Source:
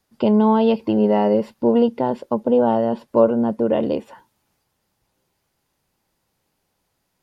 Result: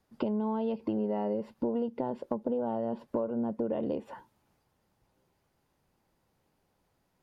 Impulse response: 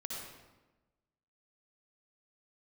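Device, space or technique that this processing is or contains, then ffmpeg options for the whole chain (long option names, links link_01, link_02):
serial compression, peaks first: -af "acompressor=threshold=-25dB:ratio=5,acompressor=threshold=-33dB:ratio=1.5,highshelf=frequency=2100:gain=-9.5"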